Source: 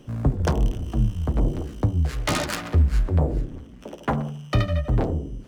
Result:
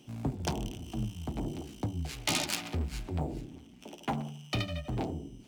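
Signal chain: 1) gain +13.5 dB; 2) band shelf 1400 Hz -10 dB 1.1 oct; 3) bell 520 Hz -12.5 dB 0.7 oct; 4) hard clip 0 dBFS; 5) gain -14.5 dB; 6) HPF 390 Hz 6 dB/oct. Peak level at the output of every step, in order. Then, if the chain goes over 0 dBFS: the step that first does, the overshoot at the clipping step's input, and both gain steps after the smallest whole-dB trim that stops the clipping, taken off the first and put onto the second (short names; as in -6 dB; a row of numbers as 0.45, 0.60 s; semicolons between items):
+3.0, +3.0, +3.0, 0.0, -14.5, -14.0 dBFS; step 1, 3.0 dB; step 1 +10.5 dB, step 5 -11.5 dB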